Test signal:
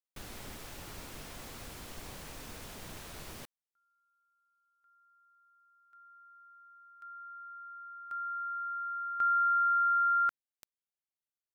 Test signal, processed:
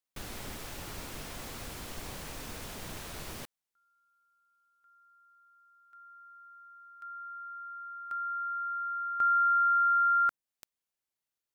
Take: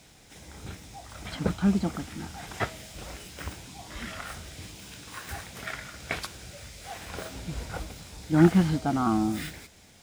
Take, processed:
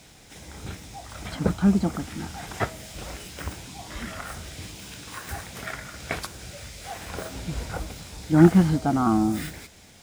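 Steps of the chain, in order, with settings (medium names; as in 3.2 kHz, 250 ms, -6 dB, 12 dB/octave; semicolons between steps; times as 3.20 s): dynamic bell 3 kHz, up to -5 dB, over -45 dBFS, Q 0.76; trim +4 dB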